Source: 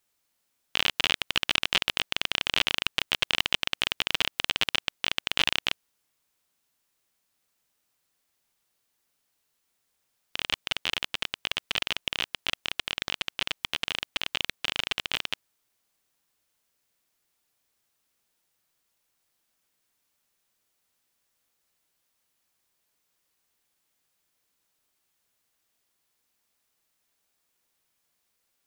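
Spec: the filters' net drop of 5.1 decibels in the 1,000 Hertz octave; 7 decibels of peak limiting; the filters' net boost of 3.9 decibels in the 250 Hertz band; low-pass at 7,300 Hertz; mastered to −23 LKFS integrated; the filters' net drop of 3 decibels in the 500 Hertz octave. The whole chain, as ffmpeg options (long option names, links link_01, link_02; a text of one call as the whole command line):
ffmpeg -i in.wav -af "lowpass=7300,equalizer=frequency=250:width_type=o:gain=6.5,equalizer=frequency=500:width_type=o:gain=-4,equalizer=frequency=1000:width_type=o:gain=-6,volume=8dB,alimiter=limit=-2dB:level=0:latency=1" out.wav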